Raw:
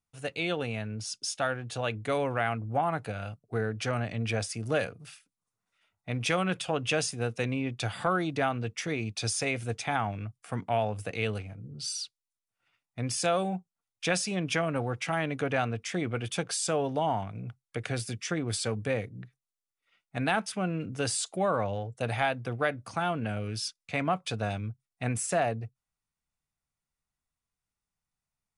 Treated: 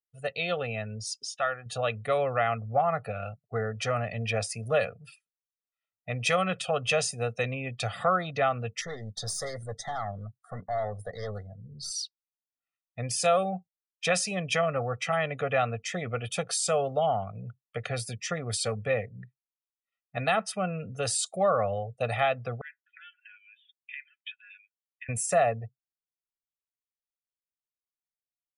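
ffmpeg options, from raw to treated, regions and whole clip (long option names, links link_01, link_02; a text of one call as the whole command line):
ffmpeg -i in.wav -filter_complex "[0:a]asettb=1/sr,asplit=3[link_01][link_02][link_03];[link_01]atrim=end=1.154[link_04];[link_02]atrim=start=1.15:end=1.66,asetpts=PTS-STARTPTS,afade=type=in:duration=0.004:curve=qsin,afade=type=out:start_time=0.506:duration=0.004:curve=qsin,tiltshelf=frequency=930:gain=-9.5,acompressor=mode=upward:threshold=-37dB:ratio=2.5:attack=3.2:release=140:knee=2.83:detection=peak,lowpass=frequency=1200:poles=1[link_05];[link_03]atrim=start=1.656[link_06];[link_04][link_05]acrossfade=duration=0.004:curve1=hsin:curve2=qsin[link_07];[link_07][link_06]acrossfade=duration=0.004:curve1=qsin:curve2=hsin,asettb=1/sr,asplit=3[link_08][link_09][link_10];[link_08]atrim=end=8.814[link_11];[link_09]atrim=start=8.81:end=11.91,asetpts=PTS-STARTPTS,afade=type=in:duration=0.004:curve=qsin,afade=type=out:start_time=3.096:duration=0.004:curve=qsin,aeval=exprs='(tanh(31.6*val(0)+0.4)-tanh(0.4))/31.6':channel_layout=same,asuperstop=centerf=2600:order=8:qfactor=2.2[link_12];[link_10]atrim=start=11.906[link_13];[link_11][link_12]acrossfade=duration=0.004:curve1=hsin:curve2=qsin[link_14];[link_14][link_13]acrossfade=duration=0.004:curve1=qsin:curve2=hsin,asettb=1/sr,asplit=3[link_15][link_16][link_17];[link_15]atrim=end=22.614[link_18];[link_16]atrim=start=22.61:end=25.09,asetpts=PTS-STARTPTS,afade=type=in:duration=0.004:curve=qsin,afade=type=out:start_time=2.476:duration=0.004:curve=qsin,acompressor=threshold=-33dB:ratio=10:attack=3.2:release=140:knee=1:detection=peak,asuperpass=centerf=2300:order=20:qfactor=1.1[link_19];[link_17]atrim=start=25.086[link_20];[link_18][link_19]acrossfade=duration=0.004:curve1=hsin:curve2=qsin[link_21];[link_21][link_20]acrossfade=duration=0.004:curve1=qsin:curve2=hsin,afftdn=noise_reduction=24:noise_floor=-48,lowshelf=frequency=160:gain=-7,aecho=1:1:1.6:0.87" out.wav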